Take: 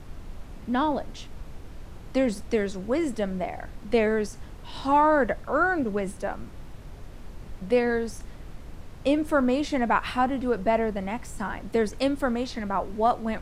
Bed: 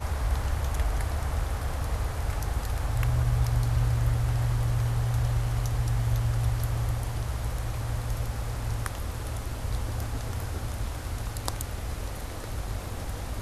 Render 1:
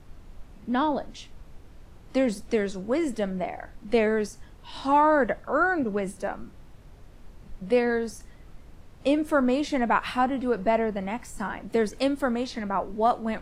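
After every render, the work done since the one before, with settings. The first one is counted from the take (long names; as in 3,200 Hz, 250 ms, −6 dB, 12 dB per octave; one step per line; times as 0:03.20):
noise reduction from a noise print 7 dB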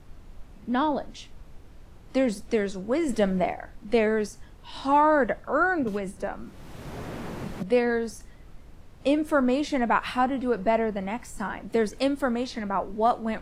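0:03.09–0:03.53: clip gain +5 dB
0:05.87–0:07.63: multiband upward and downward compressor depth 100%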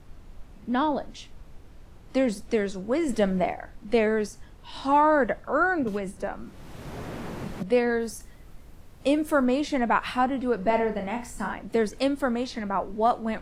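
0:08.00–0:09.45: high-shelf EQ 9,700 Hz +11 dB
0:10.57–0:11.54: flutter between parallel walls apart 5.7 metres, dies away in 0.3 s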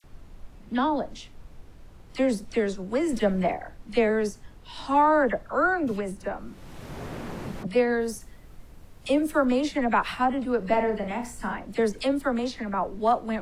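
all-pass dispersion lows, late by 41 ms, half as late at 1,400 Hz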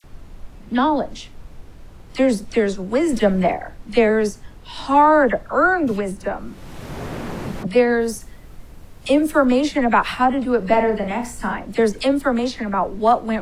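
level +7 dB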